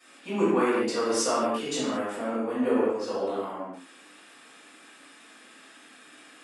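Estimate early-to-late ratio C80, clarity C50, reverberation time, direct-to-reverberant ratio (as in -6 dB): 1.0 dB, -2.0 dB, no single decay rate, -15.5 dB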